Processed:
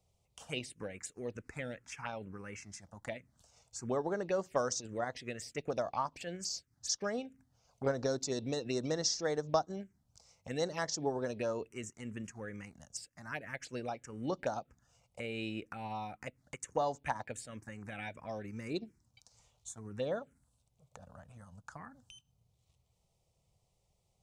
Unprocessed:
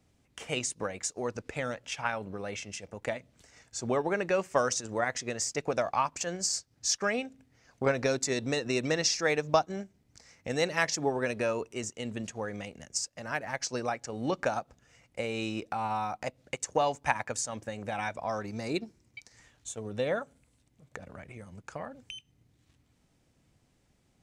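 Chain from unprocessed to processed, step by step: 21.24–21.72 dynamic EQ 1500 Hz, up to +5 dB, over -58 dBFS, Q 0.99; envelope phaser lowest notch 270 Hz, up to 2500 Hz, full sweep at -25.5 dBFS; gain -4.5 dB

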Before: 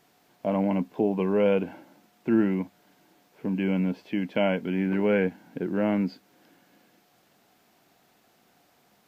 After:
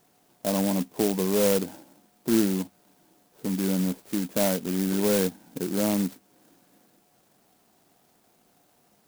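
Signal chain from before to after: clock jitter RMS 0.13 ms

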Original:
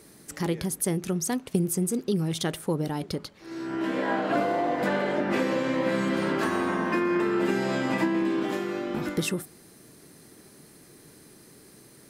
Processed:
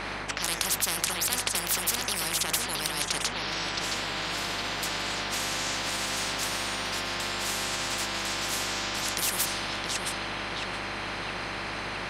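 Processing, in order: low-pass opened by the level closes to 1400 Hz, open at -24 dBFS; LPF 3600 Hz 6 dB/oct; resonant low shelf 630 Hz -10 dB, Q 3; de-hum 54.14 Hz, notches 39; reverse; compressor, threshold -44 dBFS, peak gain reduction 19.5 dB; reverse; hum 50 Hz, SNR 15 dB; on a send: darkening echo 0.669 s, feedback 73%, low-pass 1600 Hz, level -5 dB; on the sum: maximiser +33 dB; spectral compressor 10:1; gain -1 dB

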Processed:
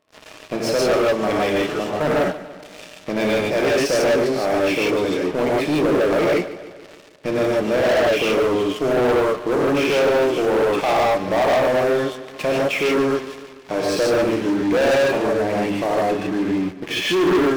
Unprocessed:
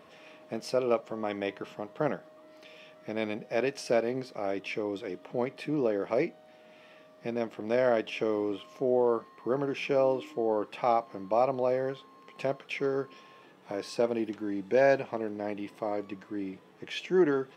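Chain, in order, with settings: non-linear reverb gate 0.18 s rising, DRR -3.5 dB; sample leveller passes 5; warbling echo 0.146 s, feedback 57%, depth 58 cents, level -15.5 dB; gain -6 dB

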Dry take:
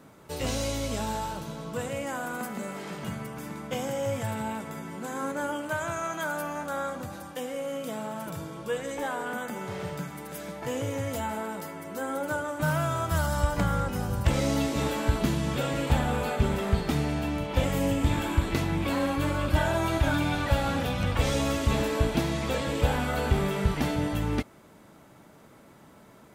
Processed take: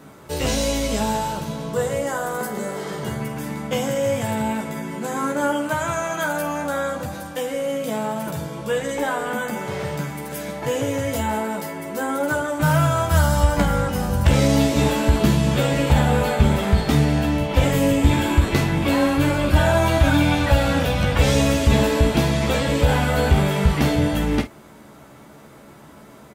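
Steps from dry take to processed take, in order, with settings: 1.73–3.21 thirty-one-band EQ 250 Hz -10 dB, 400 Hz +9 dB, 2500 Hz -10 dB; early reflections 14 ms -5 dB, 49 ms -11.5 dB; maximiser +11 dB; gain -4 dB

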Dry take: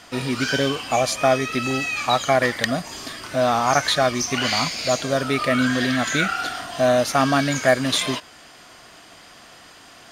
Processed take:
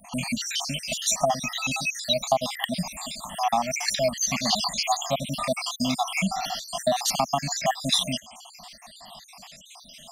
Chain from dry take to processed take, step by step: random spectral dropouts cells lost 66%; Chebyshev band-stop 190–770 Hz, order 2; compressor 4:1, threshold -26 dBFS, peak gain reduction 8 dB; fixed phaser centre 400 Hz, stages 6; gain +8.5 dB

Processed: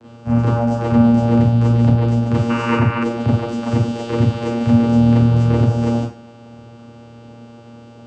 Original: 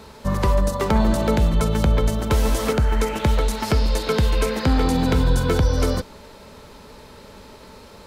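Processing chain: vocoder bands 8, saw 117 Hz; Schroeder reverb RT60 0.35 s, combs from 26 ms, DRR -7.5 dB; spectral gain 2.5–3.04, 860–3000 Hz +12 dB

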